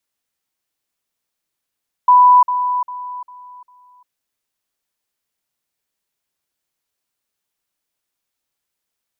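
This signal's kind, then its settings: level ladder 992 Hz -5.5 dBFS, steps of -10 dB, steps 5, 0.35 s 0.05 s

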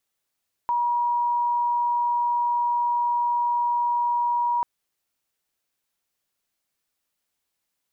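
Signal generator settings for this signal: tone sine 958 Hz -20 dBFS 3.94 s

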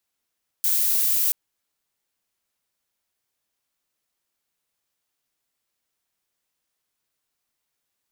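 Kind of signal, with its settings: noise violet, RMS -21 dBFS 0.68 s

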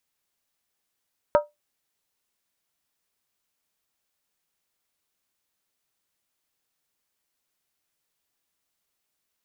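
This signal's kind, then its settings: skin hit, lowest mode 592 Hz, decay 0.18 s, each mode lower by 5.5 dB, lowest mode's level -11 dB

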